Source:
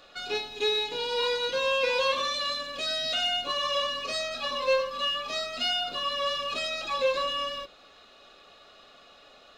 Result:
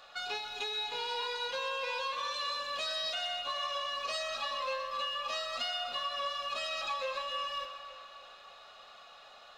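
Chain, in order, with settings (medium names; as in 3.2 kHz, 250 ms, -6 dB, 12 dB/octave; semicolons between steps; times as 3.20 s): FFT filter 160 Hz 0 dB, 320 Hz -6 dB, 840 Hz +12 dB, 2.3 kHz +7 dB; compression, threshold -25 dBFS, peak gain reduction 11 dB; two-band feedback delay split 2.9 kHz, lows 294 ms, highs 126 ms, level -10 dB; trim -8.5 dB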